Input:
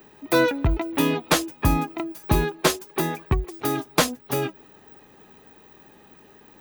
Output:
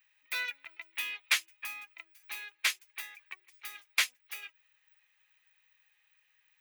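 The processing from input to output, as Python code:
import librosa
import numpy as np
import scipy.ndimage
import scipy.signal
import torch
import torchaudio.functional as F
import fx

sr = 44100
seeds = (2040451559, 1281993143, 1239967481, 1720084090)

y = fx.highpass_res(x, sr, hz=2200.0, q=3.3)
y = fx.upward_expand(y, sr, threshold_db=-35.0, expansion=1.5)
y = y * 10.0 ** (-7.5 / 20.0)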